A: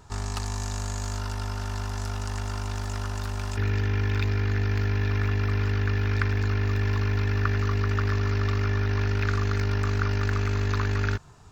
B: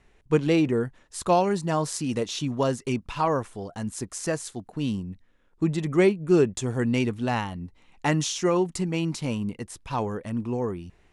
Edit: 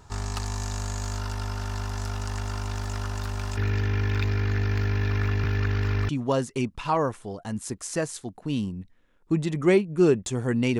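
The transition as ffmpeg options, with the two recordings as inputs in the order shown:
ffmpeg -i cue0.wav -i cue1.wav -filter_complex "[0:a]apad=whole_dur=10.79,atrim=end=10.79,asplit=2[link_01][link_02];[link_01]atrim=end=5.442[link_03];[link_02]atrim=start=5.438:end=6.092,asetpts=PTS-STARTPTS,areverse[link_04];[1:a]atrim=start=2.398:end=7.1[link_05];[link_03][link_04]acrossfade=duration=0.004:curve1=hsin:curve2=hsin[link_06];[link_06][link_05]acrossfade=duration=0.004:curve1=hsin:curve2=hsin" out.wav

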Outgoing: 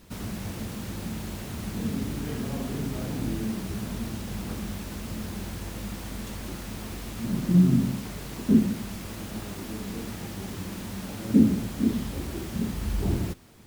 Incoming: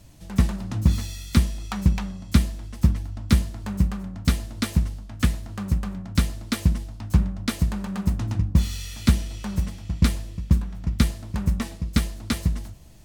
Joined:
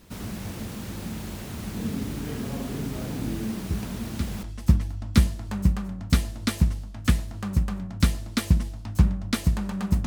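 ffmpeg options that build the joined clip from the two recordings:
ffmpeg -i cue0.wav -i cue1.wav -filter_complex "[1:a]asplit=2[link_01][link_02];[0:a]apad=whole_dur=10.06,atrim=end=10.06,atrim=end=4.432[link_03];[link_02]atrim=start=2.578:end=8.21[link_04];[link_01]atrim=start=1.85:end=2.58,asetpts=PTS-STARTPTS,volume=-12dB,afade=type=in:duration=0.004:curve=hsin,afade=type=out:start_time=0.726:duration=0.004:curve=hsin,adelay=3700[link_05];[link_03][link_04]acrossfade=duration=0.004:curve1=hsin:curve2=hsin[link_06];[link_06][link_05]amix=inputs=2:normalize=0" out.wav

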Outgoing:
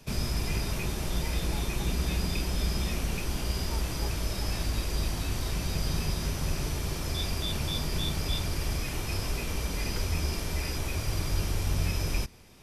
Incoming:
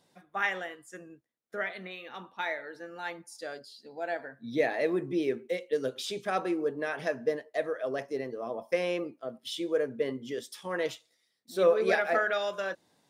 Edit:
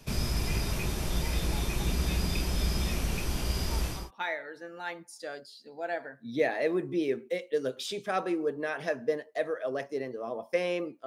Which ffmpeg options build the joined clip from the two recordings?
ffmpeg -i cue0.wav -i cue1.wav -filter_complex "[0:a]apad=whole_dur=11.06,atrim=end=11.06,atrim=end=4.11,asetpts=PTS-STARTPTS[link_01];[1:a]atrim=start=2.04:end=9.25,asetpts=PTS-STARTPTS[link_02];[link_01][link_02]acrossfade=duration=0.26:curve1=tri:curve2=tri" out.wav

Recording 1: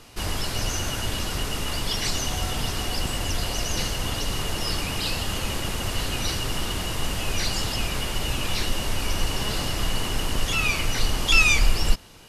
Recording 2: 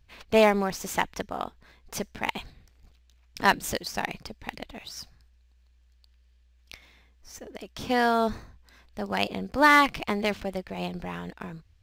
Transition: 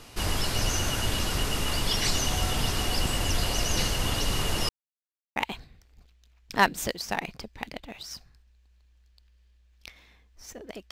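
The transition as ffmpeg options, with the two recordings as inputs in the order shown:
ffmpeg -i cue0.wav -i cue1.wav -filter_complex "[0:a]apad=whole_dur=10.91,atrim=end=10.91,asplit=2[link_01][link_02];[link_01]atrim=end=4.69,asetpts=PTS-STARTPTS,afade=type=out:start_time=4.686:duration=0.004:curve=hsin[link_03];[link_02]atrim=start=4.69:end=5.36,asetpts=PTS-STARTPTS,volume=0[link_04];[1:a]atrim=start=2.22:end=7.77,asetpts=PTS-STARTPTS,afade=type=in:duration=0.004:curve=hsin[link_05];[link_03][link_04][link_05]concat=n=3:v=0:a=1" out.wav

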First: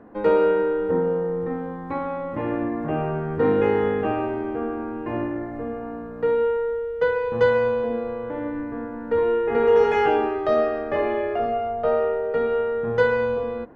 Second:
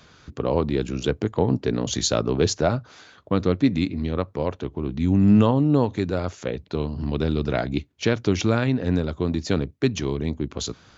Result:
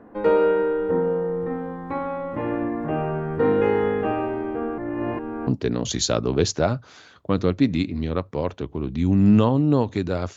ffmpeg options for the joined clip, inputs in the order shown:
ffmpeg -i cue0.wav -i cue1.wav -filter_complex "[0:a]apad=whole_dur=10.36,atrim=end=10.36,asplit=2[link_01][link_02];[link_01]atrim=end=4.782[link_03];[link_02]atrim=start=4.778:end=5.472,asetpts=PTS-STARTPTS,areverse[link_04];[1:a]atrim=start=1.488:end=6.38[link_05];[link_03][link_04]acrossfade=duration=0.004:curve1=hsin:curve2=hsin[link_06];[link_06][link_05]acrossfade=duration=0.004:curve1=hsin:curve2=hsin" out.wav

